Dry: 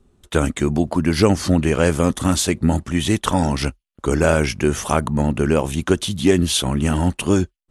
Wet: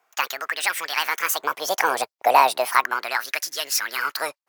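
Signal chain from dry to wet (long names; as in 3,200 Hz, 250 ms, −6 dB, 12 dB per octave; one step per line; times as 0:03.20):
gliding playback speed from 188% → 156%
auto-filter high-pass sine 0.35 Hz 700–1,800 Hz
level −2 dB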